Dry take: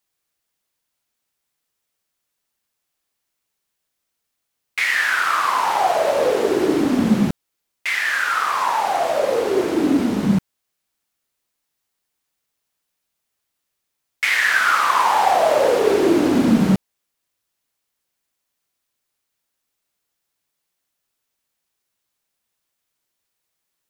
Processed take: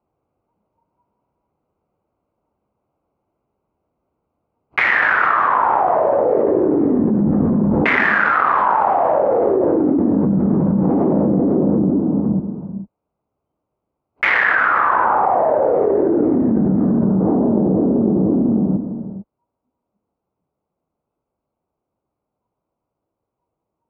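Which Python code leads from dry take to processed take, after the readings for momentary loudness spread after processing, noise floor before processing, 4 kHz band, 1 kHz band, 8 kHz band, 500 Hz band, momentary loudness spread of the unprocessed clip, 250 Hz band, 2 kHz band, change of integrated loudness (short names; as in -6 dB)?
5 LU, -78 dBFS, n/a, +3.0 dB, under -25 dB, +3.5 dB, 5 LU, +6.0 dB, +3.0 dB, +2.0 dB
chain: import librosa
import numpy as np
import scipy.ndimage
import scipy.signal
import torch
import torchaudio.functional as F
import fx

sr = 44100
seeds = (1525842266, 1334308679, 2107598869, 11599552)

y = fx.wiener(x, sr, points=25)
y = scipy.signal.sosfilt(scipy.signal.butter(2, 1200.0, 'lowpass', fs=sr, output='sos'), y)
y = fx.noise_reduce_blind(y, sr, reduce_db=23)
y = fx.env_lowpass_down(y, sr, base_hz=710.0, full_db=-15.0)
y = scipy.signal.sosfilt(scipy.signal.butter(2, 43.0, 'highpass', fs=sr, output='sos'), y)
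y = fx.rider(y, sr, range_db=3, speed_s=0.5)
y = fx.echo_feedback(y, sr, ms=502, feedback_pct=57, wet_db=-21.5)
y = fx.rev_gated(y, sr, seeds[0], gate_ms=480, shape='flat', drr_db=6.5)
y = fx.env_flatten(y, sr, amount_pct=100)
y = y * librosa.db_to_amplitude(-2.0)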